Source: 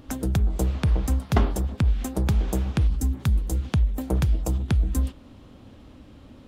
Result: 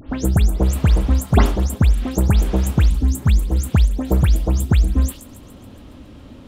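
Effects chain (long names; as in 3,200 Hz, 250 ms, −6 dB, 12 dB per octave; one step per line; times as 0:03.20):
every frequency bin delayed by itself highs late, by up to 142 ms
delay with a high-pass on its return 138 ms, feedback 61%, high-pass 4,400 Hz, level −12.5 dB
level +7 dB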